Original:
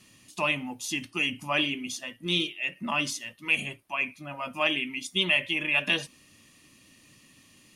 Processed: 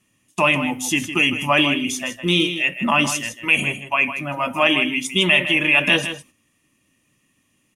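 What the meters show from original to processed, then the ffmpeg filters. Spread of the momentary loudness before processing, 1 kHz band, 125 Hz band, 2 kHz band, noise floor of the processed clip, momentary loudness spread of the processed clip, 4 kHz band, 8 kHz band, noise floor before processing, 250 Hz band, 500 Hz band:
10 LU, +11.5 dB, +12.0 dB, +9.5 dB, -66 dBFS, 9 LU, +8.0 dB, +10.0 dB, -59 dBFS, +12.0 dB, +11.0 dB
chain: -filter_complex "[0:a]agate=range=0.112:threshold=0.00562:ratio=16:detection=peak,equalizer=f=4400:t=o:w=0.53:g=-12,asplit=2[s0][s1];[s1]alimiter=limit=0.1:level=0:latency=1:release=15,volume=1.26[s2];[s0][s2]amix=inputs=2:normalize=0,aecho=1:1:158:0.299,volume=1.78"

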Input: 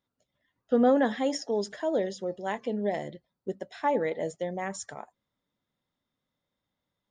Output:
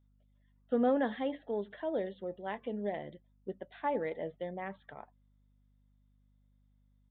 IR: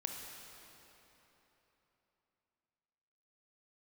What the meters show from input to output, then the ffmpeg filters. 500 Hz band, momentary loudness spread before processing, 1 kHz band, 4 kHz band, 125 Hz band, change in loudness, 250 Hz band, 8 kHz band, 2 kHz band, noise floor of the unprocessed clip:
-6.5 dB, 16 LU, -6.5 dB, -11.5 dB, -6.5 dB, -6.5 dB, -6.5 dB, under -35 dB, -6.5 dB, under -85 dBFS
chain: -af "aeval=exprs='val(0)+0.001*(sin(2*PI*50*n/s)+sin(2*PI*2*50*n/s)/2+sin(2*PI*3*50*n/s)/3+sin(2*PI*4*50*n/s)/4+sin(2*PI*5*50*n/s)/5)':c=same,aeval=exprs='0.237*(cos(1*acos(clip(val(0)/0.237,-1,1)))-cos(1*PI/2))+0.00168*(cos(7*acos(clip(val(0)/0.237,-1,1)))-cos(7*PI/2))':c=same,aresample=8000,aresample=44100,volume=0.473"

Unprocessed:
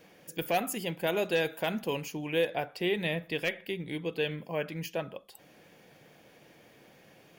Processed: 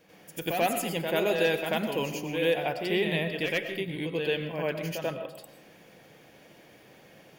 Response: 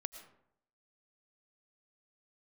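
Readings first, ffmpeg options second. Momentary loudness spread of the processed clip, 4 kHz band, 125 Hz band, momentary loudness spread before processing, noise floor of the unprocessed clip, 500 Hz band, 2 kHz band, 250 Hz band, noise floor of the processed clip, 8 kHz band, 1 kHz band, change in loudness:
8 LU, +3.0 dB, +3.0 dB, 8 LU, -59 dBFS, +3.5 dB, +3.0 dB, +3.0 dB, -55 dBFS, +3.0 dB, +3.5 dB, +3.5 dB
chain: -filter_complex "[0:a]asplit=2[s0][s1];[1:a]atrim=start_sample=2205,adelay=89[s2];[s1][s2]afir=irnorm=-1:irlink=0,volume=2.66[s3];[s0][s3]amix=inputs=2:normalize=0,volume=0.631"

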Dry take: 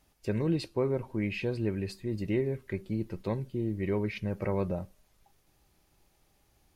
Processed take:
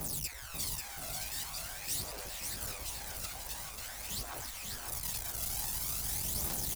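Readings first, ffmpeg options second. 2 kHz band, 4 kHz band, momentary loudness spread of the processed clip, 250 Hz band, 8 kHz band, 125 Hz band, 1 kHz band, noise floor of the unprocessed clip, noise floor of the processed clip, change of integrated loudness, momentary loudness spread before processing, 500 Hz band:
-2.0 dB, +8.5 dB, 7 LU, -19.5 dB, no reading, -13.0 dB, -1.0 dB, -69 dBFS, -45 dBFS, -4.0 dB, 5 LU, -19.0 dB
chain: -filter_complex "[0:a]aeval=exprs='val(0)+0.5*0.0188*sgn(val(0))':c=same,highpass=64,afftfilt=real='re*lt(hypot(re,im),0.0316)':imag='im*lt(hypot(re,im),0.0316)':win_size=1024:overlap=0.75,bass=f=250:g=3,treble=f=4000:g=14,acrossover=split=180|380|3700[s0][s1][s2][s3];[s0]acontrast=47[s4];[s1]alimiter=level_in=44.7:limit=0.0631:level=0:latency=1:release=19,volume=0.0224[s5];[s4][s5][s2][s3]amix=inputs=4:normalize=0,asoftclip=type=hard:threshold=0.0794,aphaser=in_gain=1:out_gain=1:delay=1.5:decay=0.67:speed=0.46:type=triangular,aecho=1:1:540|972|1318|1594|1815:0.631|0.398|0.251|0.158|0.1,adynamicequalizer=threshold=0.00224:dfrequency=1600:dqfactor=0.7:tfrequency=1600:tqfactor=0.7:attack=5:release=100:ratio=0.375:range=1.5:mode=cutabove:tftype=highshelf,volume=0.531"

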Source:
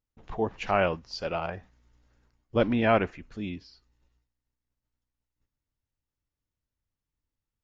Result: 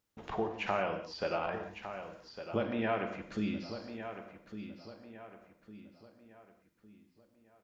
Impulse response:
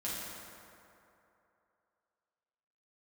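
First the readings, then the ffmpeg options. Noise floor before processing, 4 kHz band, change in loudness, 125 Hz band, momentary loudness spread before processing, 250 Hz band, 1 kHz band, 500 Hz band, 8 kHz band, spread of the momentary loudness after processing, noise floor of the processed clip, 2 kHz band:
under -85 dBFS, -5.5 dB, -9.0 dB, -8.5 dB, 15 LU, -6.0 dB, -6.0 dB, -7.0 dB, no reading, 19 LU, -71 dBFS, -6.0 dB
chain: -filter_complex "[0:a]acompressor=threshold=0.01:ratio=5,highpass=f=220:p=1,asplit=2[s0][s1];[s1]adelay=1156,lowpass=f=3400:p=1,volume=0.316,asplit=2[s2][s3];[s3]adelay=1156,lowpass=f=3400:p=1,volume=0.42,asplit=2[s4][s5];[s5]adelay=1156,lowpass=f=3400:p=1,volume=0.42,asplit=2[s6][s7];[s7]adelay=1156,lowpass=f=3400:p=1,volume=0.42[s8];[s0][s2][s4][s6][s8]amix=inputs=5:normalize=0,asplit=2[s9][s10];[1:a]atrim=start_sample=2205,afade=t=out:st=0.24:d=0.01,atrim=end_sample=11025[s11];[s10][s11]afir=irnorm=-1:irlink=0,volume=0.596[s12];[s9][s12]amix=inputs=2:normalize=0,acrossover=split=3100[s13][s14];[s14]acompressor=threshold=0.00126:ratio=4:attack=1:release=60[s15];[s13][s15]amix=inputs=2:normalize=0,volume=2"

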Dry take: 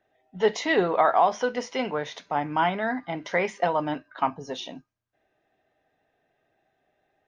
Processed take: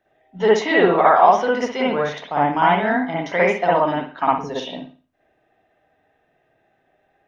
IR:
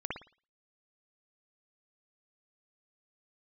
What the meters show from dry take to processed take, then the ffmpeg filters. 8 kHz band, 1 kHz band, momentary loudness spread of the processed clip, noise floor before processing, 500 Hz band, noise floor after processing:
no reading, +8.0 dB, 10 LU, -74 dBFS, +8.0 dB, -66 dBFS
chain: -filter_complex "[1:a]atrim=start_sample=2205[s0];[0:a][s0]afir=irnorm=-1:irlink=0,volume=1.68"

